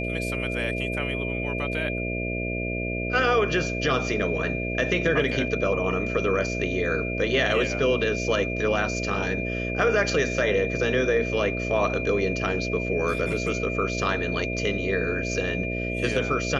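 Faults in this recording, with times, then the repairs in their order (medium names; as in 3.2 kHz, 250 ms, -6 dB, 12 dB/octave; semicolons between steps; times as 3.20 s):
buzz 60 Hz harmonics 11 -30 dBFS
whine 2.4 kHz -31 dBFS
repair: band-stop 2.4 kHz, Q 30; de-hum 60 Hz, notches 11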